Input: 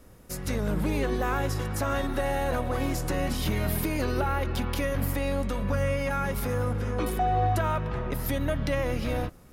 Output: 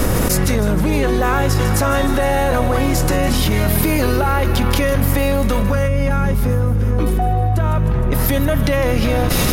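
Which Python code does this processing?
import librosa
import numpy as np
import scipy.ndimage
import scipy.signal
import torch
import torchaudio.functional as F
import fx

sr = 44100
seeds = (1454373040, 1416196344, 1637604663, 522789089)

y = fx.low_shelf(x, sr, hz=320.0, db=11.5, at=(5.87, 8.11), fade=0.02)
y = fx.echo_wet_highpass(y, sr, ms=155, feedback_pct=68, hz=4900.0, wet_db=-10)
y = fx.env_flatten(y, sr, amount_pct=100)
y = y * librosa.db_to_amplitude(-1.0)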